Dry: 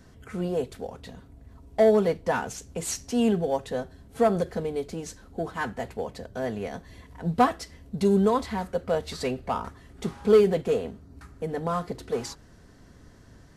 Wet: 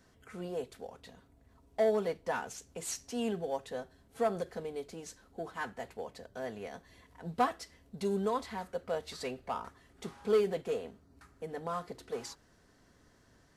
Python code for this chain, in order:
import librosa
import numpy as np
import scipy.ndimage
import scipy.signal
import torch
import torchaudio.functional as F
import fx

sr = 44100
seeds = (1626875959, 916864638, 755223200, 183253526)

y = fx.low_shelf(x, sr, hz=270.0, db=-9.5)
y = F.gain(torch.from_numpy(y), -7.0).numpy()